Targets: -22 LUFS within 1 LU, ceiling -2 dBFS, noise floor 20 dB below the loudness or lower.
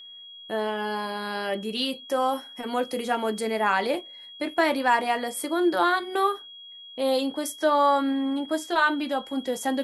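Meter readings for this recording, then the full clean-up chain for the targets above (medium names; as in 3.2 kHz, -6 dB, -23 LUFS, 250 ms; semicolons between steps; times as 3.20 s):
steady tone 3.3 kHz; tone level -42 dBFS; loudness -26.0 LUFS; peak level -9.0 dBFS; loudness target -22.0 LUFS
-> band-stop 3.3 kHz, Q 30; trim +4 dB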